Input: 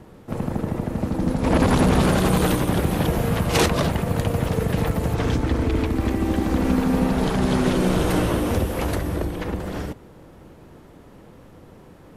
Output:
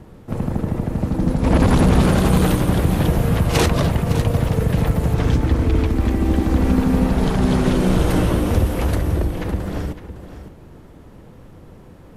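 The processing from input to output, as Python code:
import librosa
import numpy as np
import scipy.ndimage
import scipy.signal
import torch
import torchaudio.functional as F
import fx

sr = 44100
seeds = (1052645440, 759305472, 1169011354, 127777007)

y = fx.low_shelf(x, sr, hz=150.0, db=8.0)
y = y + 10.0 ** (-12.5 / 20.0) * np.pad(y, (int(559 * sr / 1000.0), 0))[:len(y)]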